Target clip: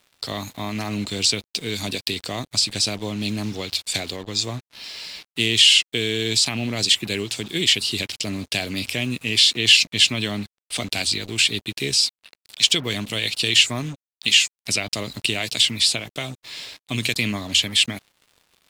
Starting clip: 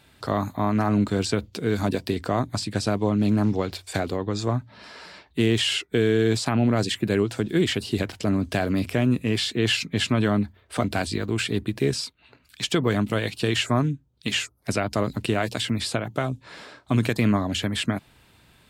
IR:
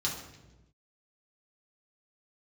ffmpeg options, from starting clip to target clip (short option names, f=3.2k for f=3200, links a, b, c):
-af "aexciter=amount=11.8:drive=4.8:freq=2.2k,acrusher=bits=4:mix=0:aa=0.5,lowpass=f=3.4k:p=1,volume=-6dB"